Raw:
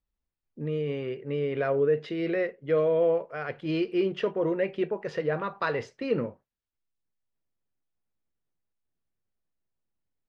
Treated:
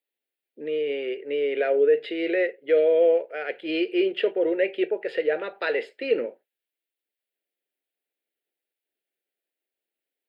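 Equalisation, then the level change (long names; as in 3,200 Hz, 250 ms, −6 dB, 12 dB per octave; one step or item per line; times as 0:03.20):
high-pass filter 370 Hz 24 dB per octave
phaser with its sweep stopped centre 2,600 Hz, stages 4
+8.0 dB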